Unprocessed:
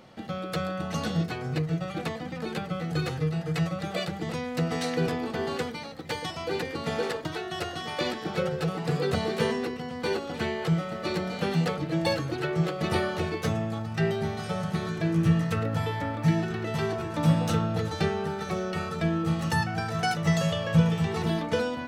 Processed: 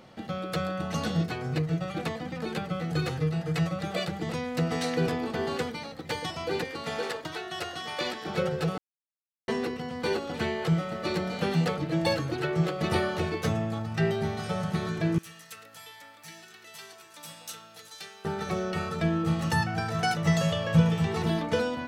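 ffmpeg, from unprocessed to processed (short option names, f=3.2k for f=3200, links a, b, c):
-filter_complex "[0:a]asettb=1/sr,asplit=3[a][b][c];[a]atrim=end=6.644[d];[b]atrim=start=6.64:end=8.28,asetpts=PTS-STARTPTS,afade=t=in:d=0.004:c=qsin,afade=t=out:st=1.636:d=0.004:c=qsin,lowshelf=f=410:g=-8.5[e];[c]atrim=start=8.276[f];[d][e]acrossfade=d=0.004:c1=hsin:c2=qsin[g];[g][f]acrossfade=d=0.004:c1=qsin:c2=hsin,asettb=1/sr,asplit=3[h][i][j];[h]atrim=end=15.184[k];[i]atrim=start=15.18:end=18.25,asetpts=PTS-STARTPTS,afade=t=in:d=0.004:c=qsin,afade=t=out:st=3.066:d=0.004:c=qsin,aderivative[l];[j]atrim=start=18.246[m];[k][l]acrossfade=d=0.004:c1=hsin:c2=qsin[n];[n][m]acrossfade=d=0.004:c1=qsin:c2=hsin,asplit=3[o][p][q];[o]atrim=end=8.78,asetpts=PTS-STARTPTS,afade=t=out:st=8.776:d=0.004:c=hsin[r];[p]atrim=start=8.78:end=9.48,asetpts=PTS-STARTPTS,volume=0[s];[q]atrim=start=9.48,asetpts=PTS-STARTPTS,afade=t=in:d=0.004:c=hsin[t];[r][s][t]concat=n=3:v=0:a=1"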